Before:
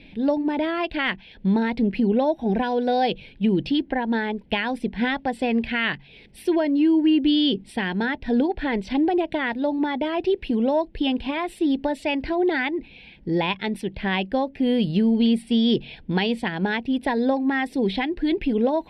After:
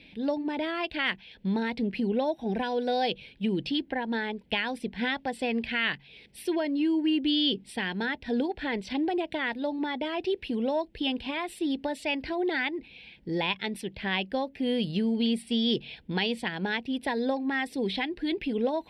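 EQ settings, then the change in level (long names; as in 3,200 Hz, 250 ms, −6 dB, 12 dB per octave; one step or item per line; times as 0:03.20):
high-pass filter 44 Hz
parametric band 480 Hz +2.5 dB 0.33 octaves
high-shelf EQ 2,000 Hz +9 dB
−8.0 dB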